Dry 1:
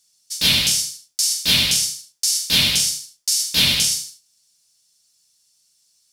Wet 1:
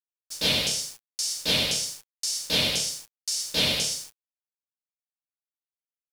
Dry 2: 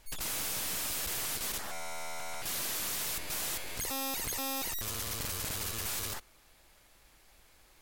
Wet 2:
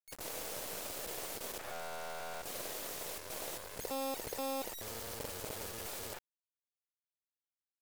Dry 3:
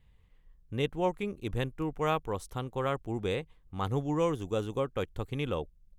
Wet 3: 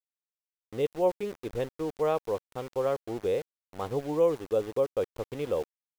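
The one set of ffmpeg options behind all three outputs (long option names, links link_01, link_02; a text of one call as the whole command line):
ffmpeg -i in.wav -filter_complex "[0:a]acrossover=split=8800[link_01][link_02];[link_02]acompressor=threshold=-31dB:ratio=4:attack=1:release=60[link_03];[link_01][link_03]amix=inputs=2:normalize=0,equalizer=frequency=520:width=0.96:gain=14.5,aeval=exprs='val(0)*gte(abs(val(0)),0.0237)':channel_layout=same,volume=-8dB" out.wav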